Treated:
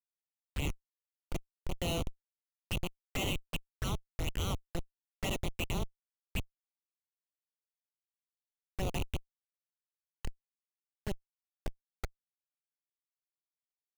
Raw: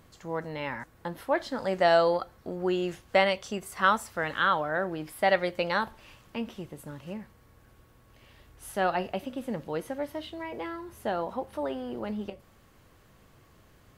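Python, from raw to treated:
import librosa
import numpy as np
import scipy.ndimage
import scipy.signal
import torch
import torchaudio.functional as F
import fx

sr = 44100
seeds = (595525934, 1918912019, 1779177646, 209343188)

y = fx.filter_sweep_bandpass(x, sr, from_hz=2700.0, to_hz=590.0, start_s=10.56, end_s=13.91, q=5.4)
y = fx.schmitt(y, sr, flips_db=-39.5)
y = fx.env_flanger(y, sr, rest_ms=11.4, full_db=-48.5)
y = F.gain(torch.from_numpy(y), 17.5).numpy()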